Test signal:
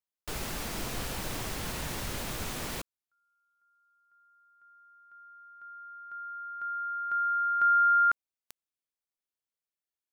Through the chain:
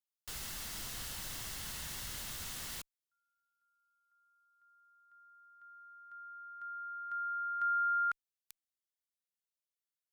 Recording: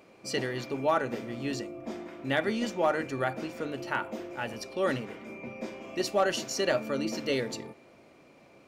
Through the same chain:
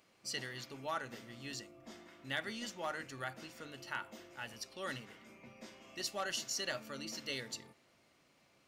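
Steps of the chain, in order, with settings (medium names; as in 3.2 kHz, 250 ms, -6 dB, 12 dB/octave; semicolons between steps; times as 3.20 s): amplifier tone stack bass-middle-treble 5-5-5; band-stop 2.4 kHz, Q 10; trim +3 dB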